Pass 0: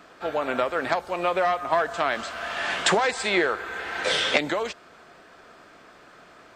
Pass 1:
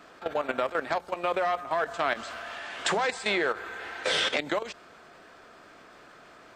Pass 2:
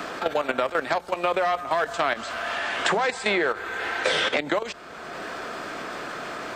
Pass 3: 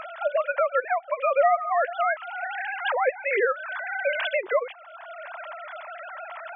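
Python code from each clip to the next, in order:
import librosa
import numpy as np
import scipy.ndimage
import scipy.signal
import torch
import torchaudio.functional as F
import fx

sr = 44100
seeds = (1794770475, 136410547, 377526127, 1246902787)

y1 = fx.level_steps(x, sr, step_db=13)
y1 = fx.hum_notches(y1, sr, base_hz=60, count=3)
y2 = fx.band_squash(y1, sr, depth_pct=70)
y2 = y2 * 10.0 ** (4.0 / 20.0)
y3 = fx.sine_speech(y2, sr)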